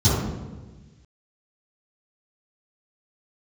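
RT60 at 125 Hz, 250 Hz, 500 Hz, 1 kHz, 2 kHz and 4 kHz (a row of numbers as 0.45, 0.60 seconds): 1.7, 1.5, 1.4, 1.2, 1.3, 0.90 seconds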